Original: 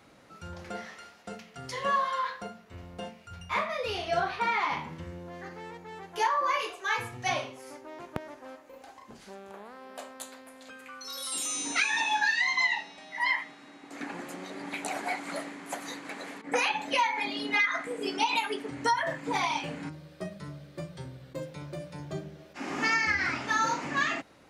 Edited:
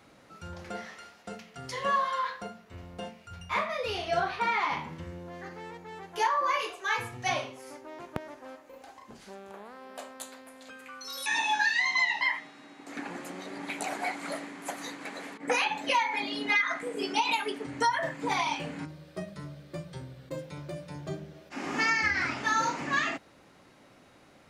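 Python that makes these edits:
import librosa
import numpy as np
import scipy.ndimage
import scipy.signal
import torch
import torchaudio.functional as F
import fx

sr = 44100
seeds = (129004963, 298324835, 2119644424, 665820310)

y = fx.edit(x, sr, fx.cut(start_s=11.26, length_s=0.62),
    fx.cut(start_s=12.83, length_s=0.42), tone=tone)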